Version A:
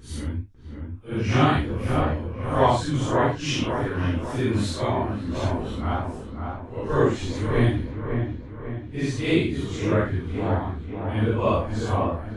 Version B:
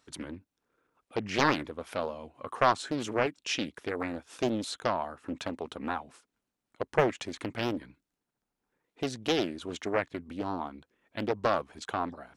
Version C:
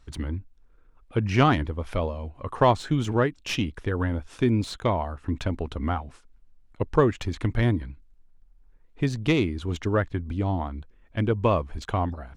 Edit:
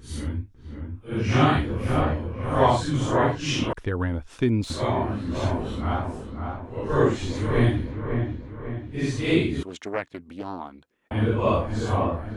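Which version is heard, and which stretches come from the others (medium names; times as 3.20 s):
A
3.73–4.70 s: from C
9.63–11.11 s: from B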